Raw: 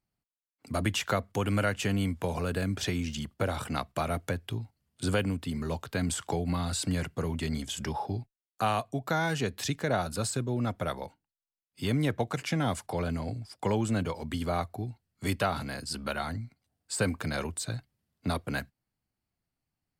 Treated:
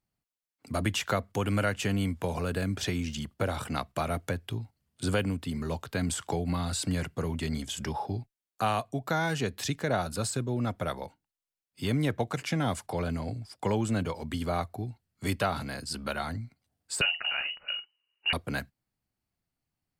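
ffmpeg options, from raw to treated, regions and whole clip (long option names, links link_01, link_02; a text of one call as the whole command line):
ffmpeg -i in.wav -filter_complex "[0:a]asettb=1/sr,asplit=3[link_01][link_02][link_03];[link_01]atrim=end=17.014[link_04];[link_02]atrim=start=17.01:end=18.33,asetpts=PTS-STARTPTS,afade=type=in:duration=0.004:curve=qsin,afade=type=out:start_time=1.316:duration=0.004:curve=qsin,equalizer=frequency=180:width_type=o:width=0.4:gain=4.5,lowpass=frequency=2600:width_type=q:width=0.5098,lowpass=frequency=2600:width_type=q:width=0.6013,lowpass=frequency=2600:width_type=q:width=0.9,lowpass=frequency=2600:width_type=q:width=2.563,afreqshift=-3000,asplit=2[link_05][link_06];[link_06]adelay=48,volume=-12.5dB[link_07];[link_05][link_07]amix=inputs=2:normalize=0,atrim=end_sample=58212[link_08];[link_03]atrim=start=18.326[link_09];[link_04][link_08]acrossfade=duration=0.004:curve1=hsin:curve2=qsin[link_10];[link_10][link_09]acrossfade=duration=0.004:curve1=qsin:curve2=hsin" out.wav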